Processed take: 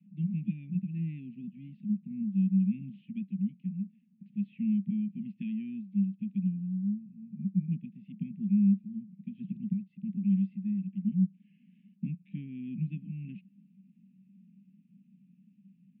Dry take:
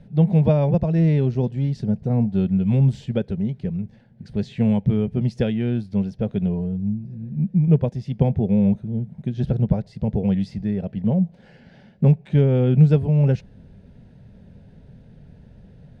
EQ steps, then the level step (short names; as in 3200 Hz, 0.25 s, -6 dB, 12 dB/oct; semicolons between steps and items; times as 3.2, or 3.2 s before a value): Chebyshev band-pass 190–2600 Hz, order 5; inverse Chebyshev band-stop 450–1400 Hz, stop band 60 dB; 0.0 dB